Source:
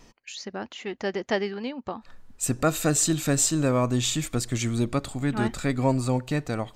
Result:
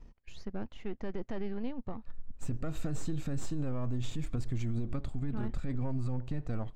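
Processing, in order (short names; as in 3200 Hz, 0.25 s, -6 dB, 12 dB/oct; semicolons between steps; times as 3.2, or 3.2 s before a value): half-wave gain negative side -7 dB; RIAA curve playback; limiter -16 dBFS, peak gain reduction 11 dB; gain -8.5 dB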